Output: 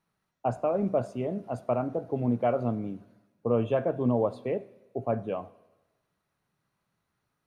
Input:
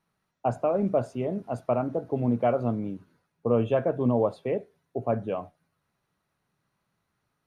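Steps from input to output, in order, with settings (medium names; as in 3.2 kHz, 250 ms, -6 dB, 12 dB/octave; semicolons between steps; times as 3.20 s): Schroeder reverb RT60 1.1 s, combs from 25 ms, DRR 18.5 dB; trim -2 dB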